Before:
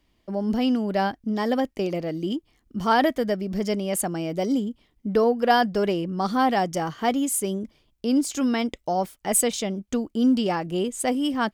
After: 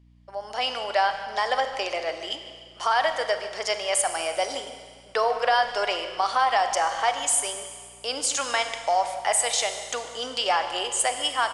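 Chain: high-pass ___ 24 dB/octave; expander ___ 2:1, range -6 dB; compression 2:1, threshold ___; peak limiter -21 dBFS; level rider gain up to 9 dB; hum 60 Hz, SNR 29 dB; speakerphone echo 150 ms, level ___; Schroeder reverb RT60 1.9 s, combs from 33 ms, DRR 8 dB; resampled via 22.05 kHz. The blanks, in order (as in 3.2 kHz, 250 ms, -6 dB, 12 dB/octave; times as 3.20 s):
690 Hz, -52 dBFS, -30 dBFS, -14 dB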